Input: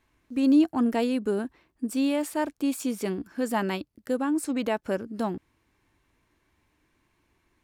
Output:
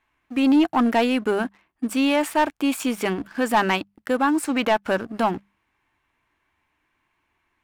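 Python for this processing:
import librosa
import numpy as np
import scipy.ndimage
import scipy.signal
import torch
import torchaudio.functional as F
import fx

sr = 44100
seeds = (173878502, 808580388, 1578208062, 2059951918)

y = fx.band_shelf(x, sr, hz=1500.0, db=9.0, octaves=2.5)
y = fx.hum_notches(y, sr, base_hz=50, count=4)
y = fx.leveller(y, sr, passes=2)
y = y * 10.0 ** (-3.0 / 20.0)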